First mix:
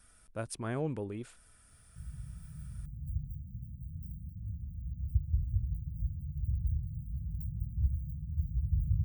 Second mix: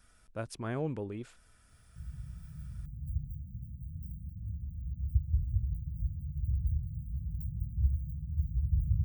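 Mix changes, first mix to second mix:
background: add bell 69 Hz +3.5 dB 0.23 oct; master: add bell 9300 Hz -10 dB 0.32 oct

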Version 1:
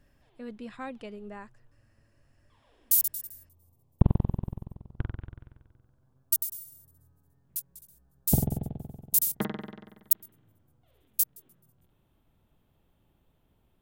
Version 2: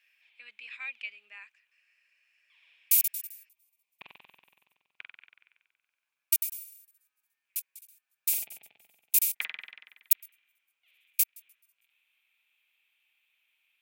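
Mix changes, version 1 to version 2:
speech: add air absorption 59 m; master: add resonant high-pass 2400 Hz, resonance Q 8.8

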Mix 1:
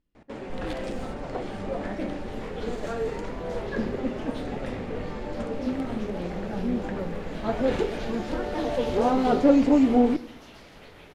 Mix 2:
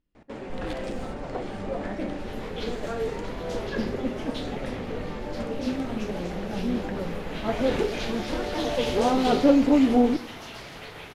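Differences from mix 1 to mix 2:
speech: send off; second sound +9.5 dB

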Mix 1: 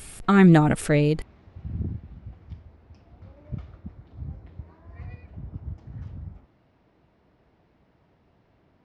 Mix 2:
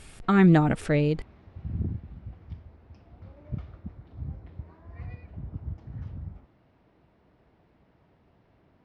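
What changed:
speech -3.0 dB; master: add air absorption 67 m

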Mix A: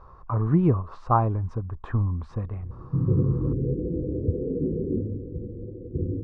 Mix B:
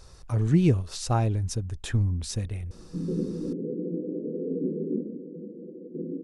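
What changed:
background: add Chebyshev high-pass 170 Hz, order 6; master: remove synth low-pass 1100 Hz, resonance Q 6.7

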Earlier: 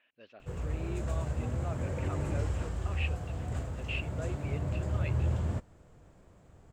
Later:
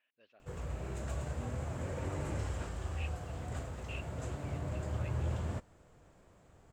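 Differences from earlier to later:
speech -9.5 dB; master: add low shelf 370 Hz -6 dB

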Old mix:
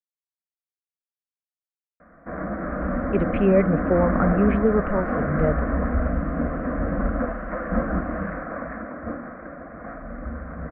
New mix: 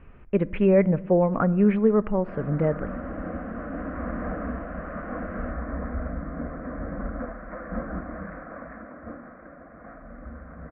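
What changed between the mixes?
speech: entry -2.80 s; background -8.0 dB

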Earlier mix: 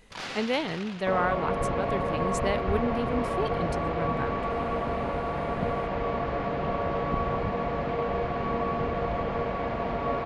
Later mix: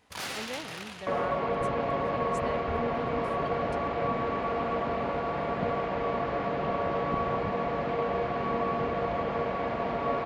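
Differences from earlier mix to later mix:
speech -11.0 dB; first sound: remove BPF 130–5300 Hz; master: add HPF 150 Hz 6 dB/oct

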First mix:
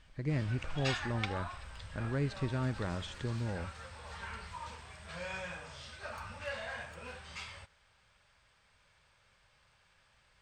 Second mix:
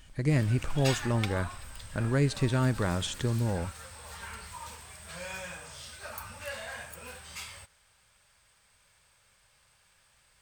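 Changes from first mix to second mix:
speech +7.5 dB; master: remove air absorption 120 m

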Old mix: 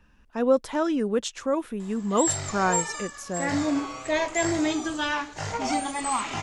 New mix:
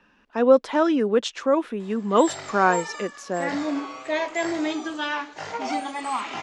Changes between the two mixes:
speech +5.5 dB; master: add three-band isolator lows -21 dB, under 200 Hz, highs -16 dB, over 5500 Hz

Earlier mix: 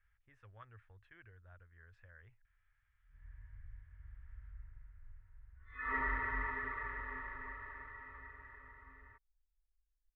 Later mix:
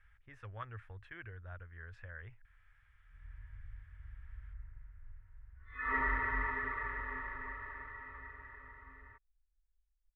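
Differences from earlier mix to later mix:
speech +11.0 dB; background +3.0 dB

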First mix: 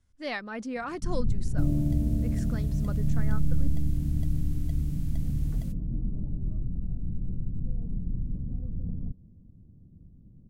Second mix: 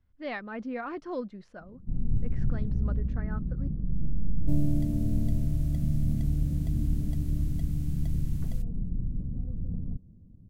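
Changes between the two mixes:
speech: add air absorption 310 m; first sound: entry +0.85 s; second sound: entry +2.90 s

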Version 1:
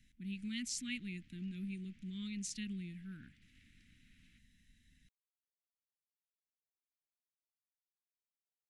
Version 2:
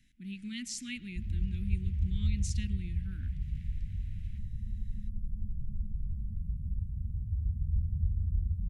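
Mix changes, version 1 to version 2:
second sound: unmuted; reverb: on, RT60 0.85 s

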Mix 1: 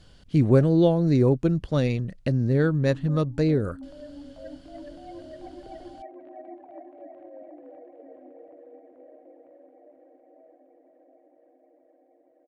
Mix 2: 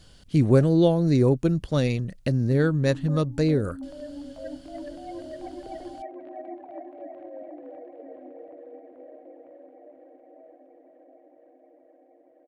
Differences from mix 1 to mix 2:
background +4.0 dB; master: remove LPF 3700 Hz 6 dB/oct

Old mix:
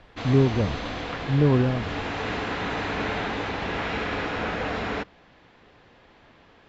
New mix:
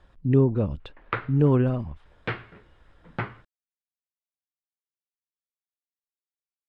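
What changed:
first sound: muted; second sound +10.5 dB

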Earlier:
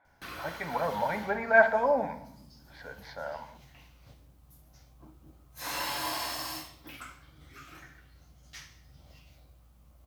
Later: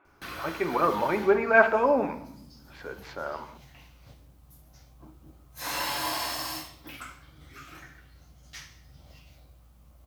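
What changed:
speech: remove fixed phaser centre 1800 Hz, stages 8; background +3.0 dB

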